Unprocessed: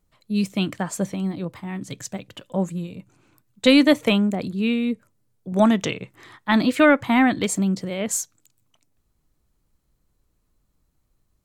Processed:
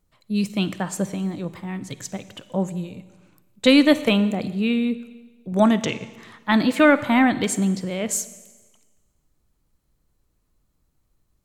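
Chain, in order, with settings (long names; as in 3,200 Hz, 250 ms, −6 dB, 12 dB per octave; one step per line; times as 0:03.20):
four-comb reverb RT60 1.3 s, DRR 14 dB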